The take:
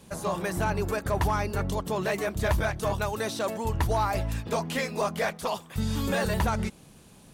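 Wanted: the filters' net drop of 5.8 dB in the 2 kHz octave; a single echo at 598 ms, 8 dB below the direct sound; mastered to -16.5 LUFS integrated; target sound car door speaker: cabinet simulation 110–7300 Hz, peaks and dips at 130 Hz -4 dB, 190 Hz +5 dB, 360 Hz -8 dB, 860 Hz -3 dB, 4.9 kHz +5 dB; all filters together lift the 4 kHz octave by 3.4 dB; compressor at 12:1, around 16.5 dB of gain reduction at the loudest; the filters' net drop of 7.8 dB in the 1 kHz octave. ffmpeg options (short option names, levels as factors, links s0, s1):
-af "equalizer=f=1000:t=o:g=-6.5,equalizer=f=2000:t=o:g=-6,equalizer=f=4000:t=o:g=4,acompressor=threshold=0.0112:ratio=12,highpass=110,equalizer=f=130:t=q:w=4:g=-4,equalizer=f=190:t=q:w=4:g=5,equalizer=f=360:t=q:w=4:g=-8,equalizer=f=860:t=q:w=4:g=-3,equalizer=f=4900:t=q:w=4:g=5,lowpass=f=7300:w=0.5412,lowpass=f=7300:w=1.3066,aecho=1:1:598:0.398,volume=23.7"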